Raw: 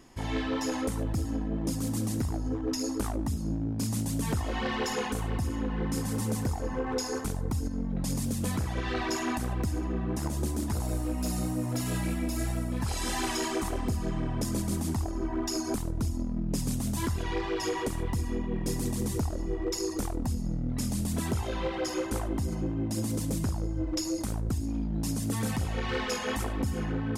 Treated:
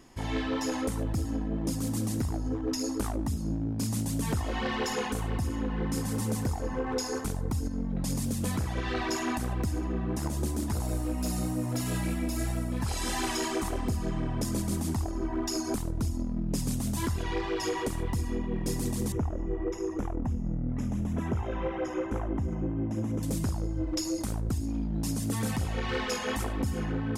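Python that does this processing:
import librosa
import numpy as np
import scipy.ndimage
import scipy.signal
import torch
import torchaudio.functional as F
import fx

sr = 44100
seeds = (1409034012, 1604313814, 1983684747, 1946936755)

y = fx.moving_average(x, sr, points=10, at=(19.12, 23.23))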